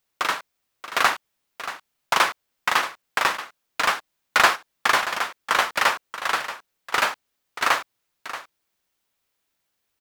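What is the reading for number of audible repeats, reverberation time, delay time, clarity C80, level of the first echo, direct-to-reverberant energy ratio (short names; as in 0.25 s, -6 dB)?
1, none, 0.631 s, none, -13.0 dB, none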